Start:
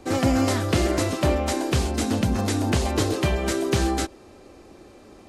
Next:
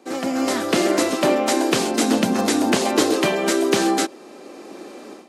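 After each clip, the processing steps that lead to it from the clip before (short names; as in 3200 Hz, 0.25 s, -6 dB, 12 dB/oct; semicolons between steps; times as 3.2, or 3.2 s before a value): HPF 210 Hz 24 dB/oct; AGC gain up to 14 dB; gain -3 dB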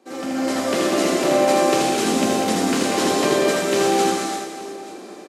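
reverse bouncing-ball echo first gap 80 ms, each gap 1.4×, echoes 5; non-linear reverb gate 0.37 s flat, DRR -2 dB; gain -6.5 dB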